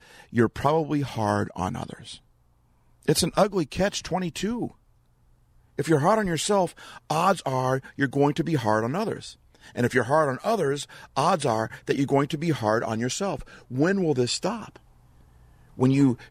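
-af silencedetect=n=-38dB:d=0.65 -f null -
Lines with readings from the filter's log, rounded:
silence_start: 2.17
silence_end: 3.03 | silence_duration: 0.86
silence_start: 4.70
silence_end: 5.78 | silence_duration: 1.08
silence_start: 14.77
silence_end: 15.78 | silence_duration: 1.01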